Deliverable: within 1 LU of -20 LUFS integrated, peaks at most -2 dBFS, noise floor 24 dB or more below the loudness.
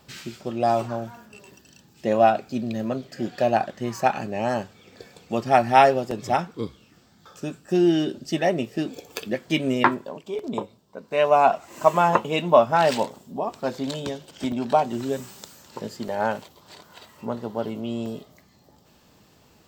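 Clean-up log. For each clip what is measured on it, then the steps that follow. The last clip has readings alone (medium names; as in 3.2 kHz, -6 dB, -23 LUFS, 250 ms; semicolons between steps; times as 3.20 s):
dropouts 5; longest dropout 2.9 ms; loudness -23.5 LUFS; peak level -2.0 dBFS; loudness target -20.0 LUFS
-> interpolate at 6.11/10.39/14.52/16.08/18.06 s, 2.9 ms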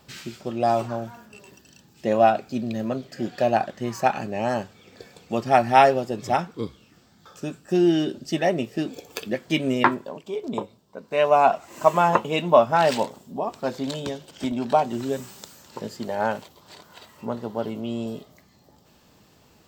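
dropouts 0; loudness -23.5 LUFS; peak level -2.0 dBFS; loudness target -20.0 LUFS
-> trim +3.5 dB; peak limiter -2 dBFS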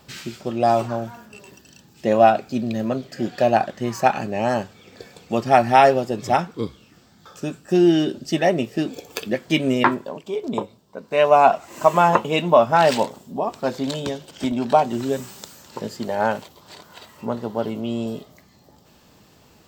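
loudness -20.5 LUFS; peak level -2.0 dBFS; noise floor -54 dBFS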